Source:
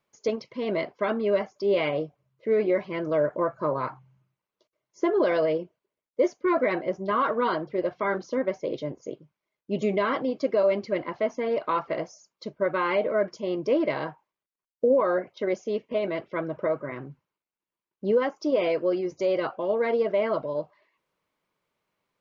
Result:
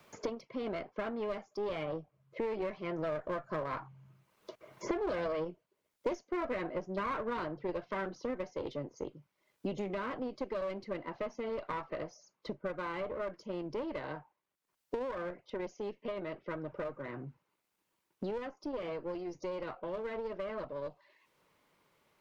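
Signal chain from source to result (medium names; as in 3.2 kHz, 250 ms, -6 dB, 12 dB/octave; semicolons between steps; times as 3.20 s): single-diode clipper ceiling -28.5 dBFS; Doppler pass-by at 5.49 s, 10 m/s, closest 13 m; three bands compressed up and down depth 100%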